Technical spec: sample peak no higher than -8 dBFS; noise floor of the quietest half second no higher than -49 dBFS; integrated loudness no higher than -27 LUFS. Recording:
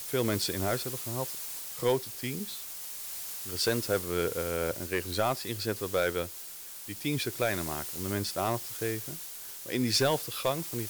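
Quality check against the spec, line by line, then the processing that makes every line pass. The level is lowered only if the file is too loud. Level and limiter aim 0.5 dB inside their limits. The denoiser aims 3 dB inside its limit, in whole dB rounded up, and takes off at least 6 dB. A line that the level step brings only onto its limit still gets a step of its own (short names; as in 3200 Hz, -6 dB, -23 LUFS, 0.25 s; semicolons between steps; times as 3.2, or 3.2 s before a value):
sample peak -16.5 dBFS: OK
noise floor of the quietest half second -44 dBFS: fail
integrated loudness -31.5 LUFS: OK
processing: denoiser 8 dB, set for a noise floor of -44 dBFS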